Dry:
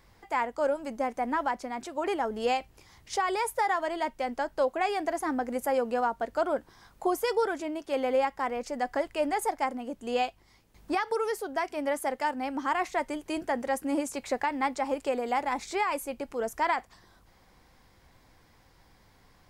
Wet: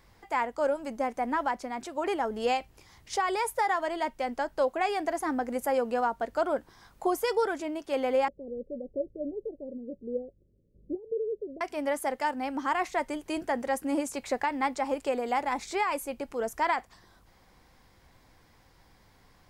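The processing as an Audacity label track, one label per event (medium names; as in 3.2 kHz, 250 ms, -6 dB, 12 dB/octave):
8.280000	11.610000	rippled Chebyshev low-pass 580 Hz, ripple 3 dB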